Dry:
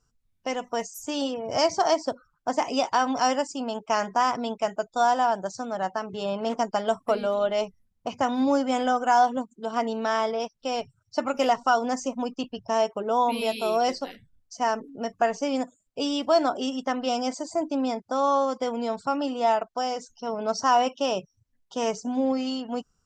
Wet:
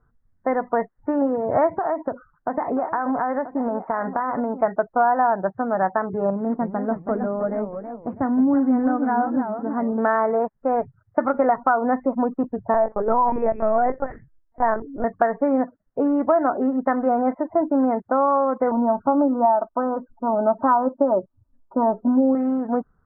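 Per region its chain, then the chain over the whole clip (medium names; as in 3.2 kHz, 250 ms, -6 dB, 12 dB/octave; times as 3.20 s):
1.76–4.61 s: low-pass 2.8 kHz + compression 10:1, threshold -27 dBFS + delay 983 ms -12.5 dB
6.30–9.98 s: high-order bell 1.1 kHz -11 dB 2.8 oct + modulated delay 319 ms, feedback 33%, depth 202 cents, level -8 dB
12.74–15.04 s: Chebyshev low-pass 2.7 kHz, order 5 + bass shelf 79 Hz -4 dB + LPC vocoder at 8 kHz pitch kept
18.71–22.35 s: steep low-pass 1.3 kHz + comb 3.3 ms, depth 73%
whole clip: steep low-pass 1.9 kHz 72 dB/octave; compression, threshold -23 dBFS; trim +8.5 dB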